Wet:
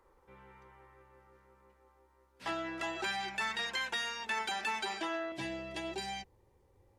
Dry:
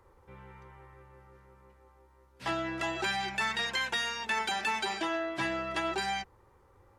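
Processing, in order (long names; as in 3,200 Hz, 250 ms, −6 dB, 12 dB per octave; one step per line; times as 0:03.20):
parametric band 100 Hz −14.5 dB 0.84 octaves, from 0:05.32 1,300 Hz
level −4 dB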